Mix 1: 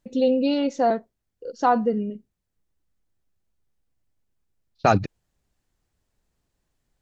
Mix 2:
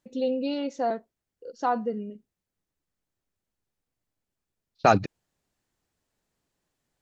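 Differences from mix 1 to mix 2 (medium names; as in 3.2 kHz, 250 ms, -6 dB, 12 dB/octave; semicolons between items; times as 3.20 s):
first voice -6.0 dB; master: add bass shelf 110 Hz -10 dB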